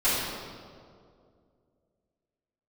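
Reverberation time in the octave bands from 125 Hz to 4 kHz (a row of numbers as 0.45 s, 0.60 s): 2.6 s, 2.6 s, 2.5 s, 2.0 s, 1.4 s, 1.3 s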